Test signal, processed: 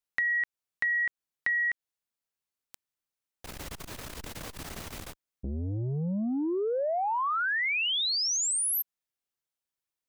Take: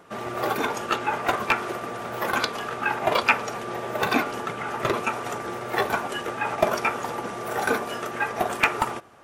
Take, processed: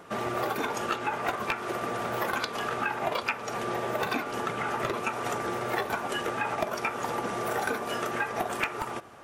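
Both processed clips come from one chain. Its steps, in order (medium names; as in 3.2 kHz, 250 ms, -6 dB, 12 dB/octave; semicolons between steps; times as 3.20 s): compression 6:1, threshold -29 dBFS; transformer saturation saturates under 400 Hz; trim +2.5 dB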